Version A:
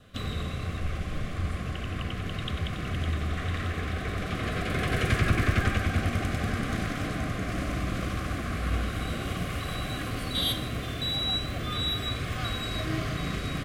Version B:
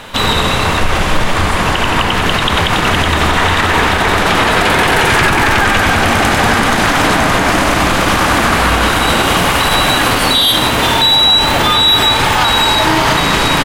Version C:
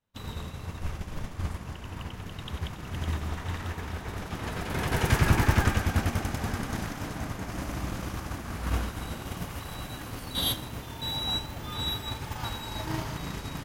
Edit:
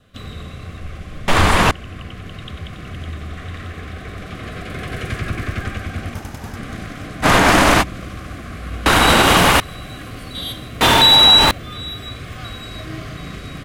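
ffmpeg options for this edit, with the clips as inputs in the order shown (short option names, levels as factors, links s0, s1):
-filter_complex "[1:a]asplit=4[s0][s1][s2][s3];[0:a]asplit=6[s4][s5][s6][s7][s8][s9];[s4]atrim=end=1.282[s10];[s0]atrim=start=1.278:end=1.712[s11];[s5]atrim=start=1.708:end=6.142[s12];[2:a]atrim=start=6.138:end=6.562[s13];[s6]atrim=start=6.558:end=7.26[s14];[s1]atrim=start=7.22:end=7.84[s15];[s7]atrim=start=7.8:end=8.862[s16];[s2]atrim=start=8.858:end=9.602[s17];[s8]atrim=start=9.598:end=10.812[s18];[s3]atrim=start=10.808:end=11.512[s19];[s9]atrim=start=11.508[s20];[s10][s11]acrossfade=d=0.004:c1=hsin:c2=hsin[s21];[s21][s12]acrossfade=d=0.004:c1=hsin:c2=hsin[s22];[s22][s13]acrossfade=d=0.004:c1=hsin:c2=hsin[s23];[s23][s14]acrossfade=d=0.004:c1=hsin:c2=hsin[s24];[s24][s15]acrossfade=d=0.04:c1=tri:c2=tri[s25];[s25][s16]acrossfade=d=0.04:c1=tri:c2=tri[s26];[s26][s17]acrossfade=d=0.004:c1=hsin:c2=hsin[s27];[s27][s18]acrossfade=d=0.004:c1=hsin:c2=hsin[s28];[s28][s19]acrossfade=d=0.004:c1=hsin:c2=hsin[s29];[s29][s20]acrossfade=d=0.004:c1=hsin:c2=hsin"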